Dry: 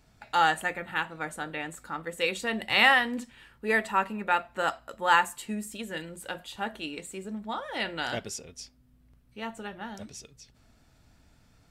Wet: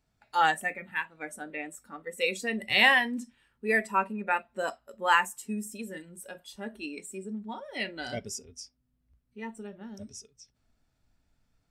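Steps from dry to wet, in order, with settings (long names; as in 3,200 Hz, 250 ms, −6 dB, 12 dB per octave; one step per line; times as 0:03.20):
noise reduction from a noise print of the clip's start 14 dB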